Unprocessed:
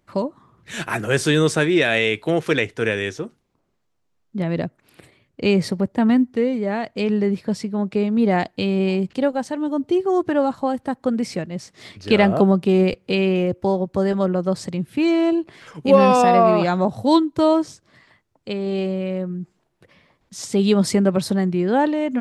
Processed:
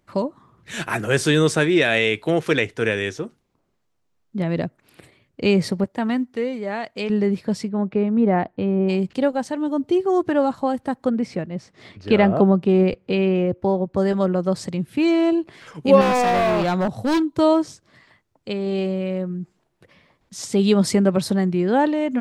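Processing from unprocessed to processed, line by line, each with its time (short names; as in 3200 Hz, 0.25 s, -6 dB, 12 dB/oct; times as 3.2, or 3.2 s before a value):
5.84–7.1 low shelf 400 Hz -9 dB
7.68–8.88 LPF 2600 Hz -> 1100 Hz
11.09–13.97 LPF 2000 Hz 6 dB/oct
16.01–17.32 hard clip -16 dBFS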